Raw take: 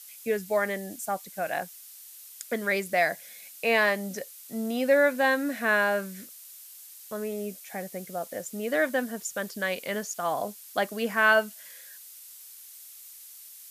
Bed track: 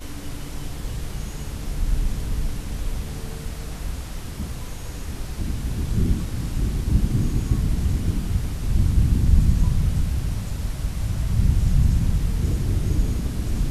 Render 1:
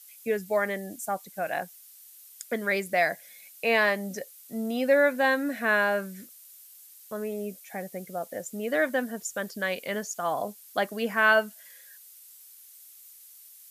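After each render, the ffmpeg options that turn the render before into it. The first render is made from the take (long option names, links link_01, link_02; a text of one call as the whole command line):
ffmpeg -i in.wav -af "afftdn=noise_reduction=6:noise_floor=-48" out.wav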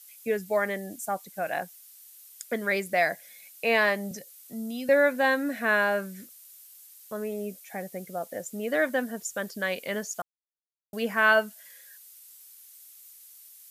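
ffmpeg -i in.wav -filter_complex "[0:a]asettb=1/sr,asplit=3[link_01][link_02][link_03];[link_01]atrim=end=4.114[link_04];[link_02]atrim=start=4.11:end=4.89,asetpts=PTS-STARTPTS,afade=type=in:duration=0.004:curve=qsin,afade=type=out:start_time=0.776:duration=0.004:curve=qsin,acrossover=split=250|3000[link_05][link_06][link_07];[link_06]acompressor=threshold=-45dB:ratio=6:attack=3.2:release=140:knee=2.83:detection=peak[link_08];[link_05][link_08][link_07]amix=inputs=3:normalize=0[link_09];[link_03]atrim=start=4.886[link_10];[link_04][link_09]acrossfade=duration=0.004:curve1=hsin:curve2=qsin[link_11];[link_11][link_10]acrossfade=duration=0.004:curve1=qsin:curve2=hsin,asplit=3[link_12][link_13][link_14];[link_12]atrim=end=10.22,asetpts=PTS-STARTPTS,afade=type=out:start_time=10.216:duration=0.004:curve=hsin[link_15];[link_13]atrim=start=10.22:end=10.93,asetpts=PTS-STARTPTS,volume=0[link_16];[link_14]atrim=start=10.93,asetpts=PTS-STARTPTS,afade=type=in:duration=0.004:curve=hsin[link_17];[link_15][link_16][link_17]concat=n=3:v=0:a=1" out.wav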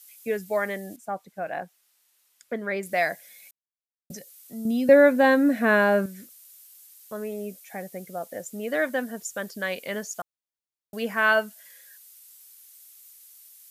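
ffmpeg -i in.wav -filter_complex "[0:a]asettb=1/sr,asplit=3[link_01][link_02][link_03];[link_01]atrim=end=0.964[link_04];[link_02]atrim=start=0.96:end=2.83,asetpts=PTS-STARTPTS,afade=type=in:duration=0.004:curve=qsin,afade=type=out:start_time=1.866:duration=0.004:curve=qsin,lowpass=frequency=1500:poles=1[link_05];[link_03]atrim=start=2.826[link_06];[link_04][link_05]acrossfade=duration=0.004:curve1=hsin:curve2=qsin[link_07];[link_07][link_06]acrossfade=duration=0.004:curve1=qsin:curve2=hsin,asettb=1/sr,asplit=3[link_08][link_09][link_10];[link_08]atrim=end=4.654[link_11];[link_09]atrim=start=4.65:end=6.06,asetpts=PTS-STARTPTS,afade=type=in:duration=0.004:curve=qsin,afade=type=out:start_time=1.406:duration=0.004:curve=qsin,equalizer=frequency=200:width=0.32:gain=10.5[link_12];[link_10]atrim=start=6.056[link_13];[link_11][link_12]acrossfade=duration=0.004:curve1=hsin:curve2=qsin[link_14];[link_14][link_13]acrossfade=duration=0.004:curve1=qsin:curve2=hsin,asplit=3[link_15][link_16][link_17];[link_15]atrim=end=3.51,asetpts=PTS-STARTPTS,afade=type=out:start_time=3.506:duration=0.004:curve=hsin[link_18];[link_16]atrim=start=3.51:end=4.1,asetpts=PTS-STARTPTS,volume=0[link_19];[link_17]atrim=start=4.1,asetpts=PTS-STARTPTS,afade=type=in:duration=0.004:curve=hsin[link_20];[link_18][link_19][link_20]concat=n=3:v=0:a=1" out.wav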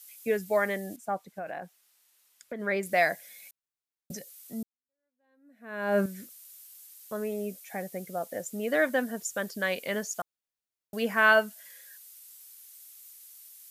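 ffmpeg -i in.wav -filter_complex "[0:a]asplit=3[link_01][link_02][link_03];[link_01]afade=type=out:start_time=1.27:duration=0.02[link_04];[link_02]acompressor=threshold=-33dB:ratio=6:attack=3.2:release=140:knee=1:detection=peak,afade=type=in:start_time=1.27:duration=0.02,afade=type=out:start_time=2.59:duration=0.02[link_05];[link_03]afade=type=in:start_time=2.59:duration=0.02[link_06];[link_04][link_05][link_06]amix=inputs=3:normalize=0,asplit=2[link_07][link_08];[link_07]atrim=end=4.63,asetpts=PTS-STARTPTS,afade=type=out:start_time=4.626:duration=0.004:curve=hsin[link_09];[link_08]atrim=start=4.63,asetpts=PTS-STARTPTS,afade=type=in:duration=1.37:curve=exp[link_10];[link_09][link_10]concat=n=2:v=0:a=1" out.wav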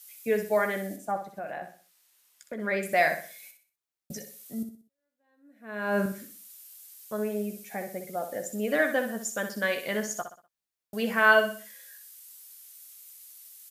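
ffmpeg -i in.wav -filter_complex "[0:a]asplit=2[link_01][link_02];[link_02]adelay=14,volume=-9dB[link_03];[link_01][link_03]amix=inputs=2:normalize=0,asplit=2[link_04][link_05];[link_05]aecho=0:1:62|124|186|248:0.376|0.139|0.0515|0.019[link_06];[link_04][link_06]amix=inputs=2:normalize=0" out.wav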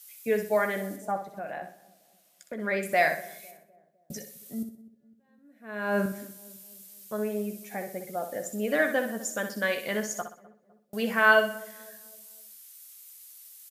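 ffmpeg -i in.wav -filter_complex "[0:a]asplit=2[link_01][link_02];[link_02]adelay=253,lowpass=frequency=860:poles=1,volume=-19dB,asplit=2[link_03][link_04];[link_04]adelay=253,lowpass=frequency=860:poles=1,volume=0.52,asplit=2[link_05][link_06];[link_06]adelay=253,lowpass=frequency=860:poles=1,volume=0.52,asplit=2[link_07][link_08];[link_08]adelay=253,lowpass=frequency=860:poles=1,volume=0.52[link_09];[link_01][link_03][link_05][link_07][link_09]amix=inputs=5:normalize=0" out.wav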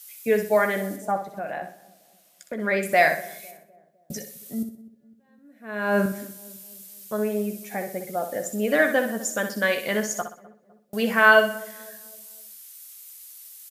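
ffmpeg -i in.wav -af "volume=5dB,alimiter=limit=-3dB:level=0:latency=1" out.wav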